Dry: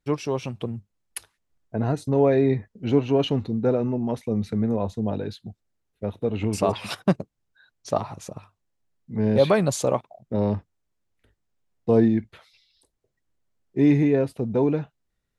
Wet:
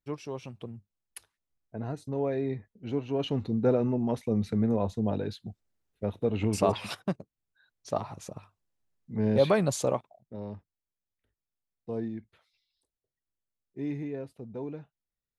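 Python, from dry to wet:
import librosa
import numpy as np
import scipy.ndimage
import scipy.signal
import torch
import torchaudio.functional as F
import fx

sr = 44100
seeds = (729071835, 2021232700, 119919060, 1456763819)

y = fx.gain(x, sr, db=fx.line((3.06, -11.0), (3.53, -2.5), (6.8, -2.5), (7.18, -12.5), (8.17, -4.5), (9.89, -4.5), (10.36, -16.0)))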